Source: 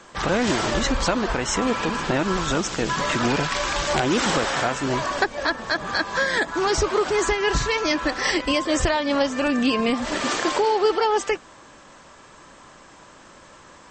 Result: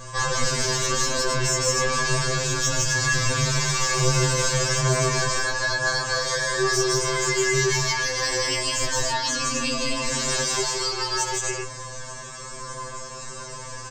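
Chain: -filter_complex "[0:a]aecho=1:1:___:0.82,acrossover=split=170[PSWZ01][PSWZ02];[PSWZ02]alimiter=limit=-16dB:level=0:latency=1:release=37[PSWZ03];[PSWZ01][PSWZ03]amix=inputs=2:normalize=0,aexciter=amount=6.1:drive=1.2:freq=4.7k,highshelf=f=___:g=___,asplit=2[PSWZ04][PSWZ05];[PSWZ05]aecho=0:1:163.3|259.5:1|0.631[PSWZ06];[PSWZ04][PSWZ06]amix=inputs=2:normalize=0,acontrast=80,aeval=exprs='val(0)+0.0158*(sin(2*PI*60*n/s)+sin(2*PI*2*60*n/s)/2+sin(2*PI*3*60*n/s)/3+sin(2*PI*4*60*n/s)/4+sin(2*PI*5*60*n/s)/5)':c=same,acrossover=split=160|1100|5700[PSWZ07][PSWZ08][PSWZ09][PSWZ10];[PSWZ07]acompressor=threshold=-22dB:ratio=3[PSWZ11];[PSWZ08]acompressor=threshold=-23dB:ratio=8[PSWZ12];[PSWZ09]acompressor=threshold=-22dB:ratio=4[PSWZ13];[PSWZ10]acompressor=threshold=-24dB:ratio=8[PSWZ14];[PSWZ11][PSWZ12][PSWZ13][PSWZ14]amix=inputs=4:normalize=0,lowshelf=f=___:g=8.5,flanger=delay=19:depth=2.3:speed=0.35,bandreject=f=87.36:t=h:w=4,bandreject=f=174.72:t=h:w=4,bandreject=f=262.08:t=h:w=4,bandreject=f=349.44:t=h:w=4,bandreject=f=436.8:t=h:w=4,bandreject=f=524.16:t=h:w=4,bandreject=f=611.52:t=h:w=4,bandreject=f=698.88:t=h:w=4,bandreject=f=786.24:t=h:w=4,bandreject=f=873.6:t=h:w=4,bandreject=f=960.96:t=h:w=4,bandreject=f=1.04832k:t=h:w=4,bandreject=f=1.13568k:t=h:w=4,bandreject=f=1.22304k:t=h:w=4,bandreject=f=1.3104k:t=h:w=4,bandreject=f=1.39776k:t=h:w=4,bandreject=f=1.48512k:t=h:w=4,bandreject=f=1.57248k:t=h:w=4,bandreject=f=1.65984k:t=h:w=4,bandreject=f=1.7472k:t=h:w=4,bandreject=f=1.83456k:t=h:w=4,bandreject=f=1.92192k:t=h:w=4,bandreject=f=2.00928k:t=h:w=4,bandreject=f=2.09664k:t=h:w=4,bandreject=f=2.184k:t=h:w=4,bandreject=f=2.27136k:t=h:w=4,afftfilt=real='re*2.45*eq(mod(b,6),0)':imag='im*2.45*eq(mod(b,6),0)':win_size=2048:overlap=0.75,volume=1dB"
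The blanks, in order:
5.9, 3.8k, -5, 78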